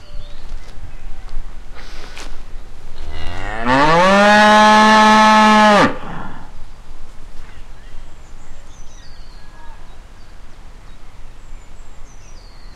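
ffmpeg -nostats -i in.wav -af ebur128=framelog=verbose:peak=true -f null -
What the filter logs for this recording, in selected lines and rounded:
Integrated loudness:
  I:         -10.0 LUFS
  Threshold: -26.6 LUFS
Loudness range:
  LRA:        15.3 LU
  Threshold: -35.6 LUFS
  LRA low:   -25.7 LUFS
  LRA high:  -10.5 LUFS
True peak:
  Peak:       -6.4 dBFS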